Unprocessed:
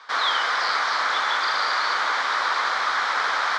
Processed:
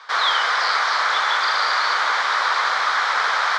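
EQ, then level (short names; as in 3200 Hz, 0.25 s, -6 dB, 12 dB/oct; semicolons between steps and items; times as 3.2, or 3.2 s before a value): bell 260 Hz -9 dB 0.88 oct; +3.5 dB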